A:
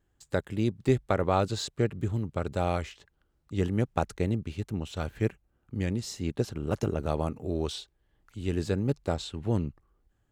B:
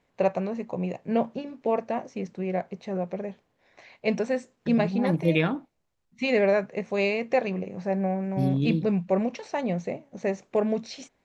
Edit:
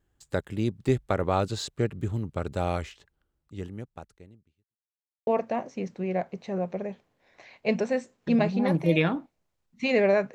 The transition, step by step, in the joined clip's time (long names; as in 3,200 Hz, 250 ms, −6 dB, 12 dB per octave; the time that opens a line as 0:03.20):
A
0:02.85–0:04.77: fade out quadratic
0:04.77–0:05.27: silence
0:05.27: continue with B from 0:01.66